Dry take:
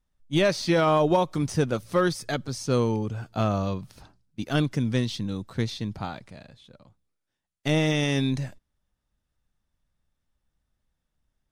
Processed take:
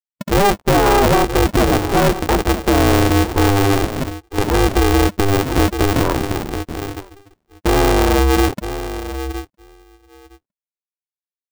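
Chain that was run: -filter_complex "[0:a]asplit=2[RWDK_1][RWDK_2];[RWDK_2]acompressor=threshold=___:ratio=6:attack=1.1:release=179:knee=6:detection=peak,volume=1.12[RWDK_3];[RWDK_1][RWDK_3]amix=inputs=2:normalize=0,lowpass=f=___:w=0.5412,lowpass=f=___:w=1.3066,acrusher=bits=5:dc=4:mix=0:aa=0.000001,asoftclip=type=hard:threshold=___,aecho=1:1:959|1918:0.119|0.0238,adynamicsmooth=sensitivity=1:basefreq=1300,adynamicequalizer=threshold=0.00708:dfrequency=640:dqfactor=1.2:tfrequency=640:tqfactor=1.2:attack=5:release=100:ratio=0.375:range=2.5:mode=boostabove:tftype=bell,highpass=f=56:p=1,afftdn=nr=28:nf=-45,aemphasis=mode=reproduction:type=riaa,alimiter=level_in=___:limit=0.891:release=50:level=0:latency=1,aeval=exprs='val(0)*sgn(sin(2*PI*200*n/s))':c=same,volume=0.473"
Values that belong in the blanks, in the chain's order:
0.0158, 1800, 1800, 0.0668, 11.2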